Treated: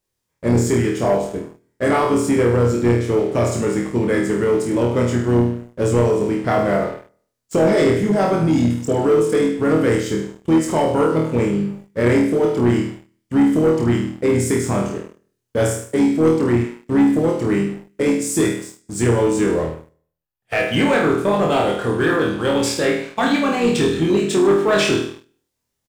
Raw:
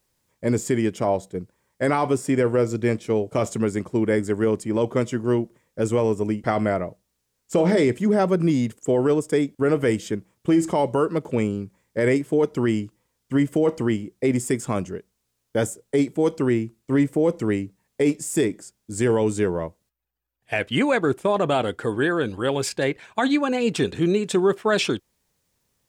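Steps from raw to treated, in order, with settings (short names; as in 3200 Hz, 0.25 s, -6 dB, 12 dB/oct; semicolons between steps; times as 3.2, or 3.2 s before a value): flutter echo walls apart 4.3 m, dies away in 0.6 s; harmoniser -5 st -11 dB; sample leveller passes 2; gain -5.5 dB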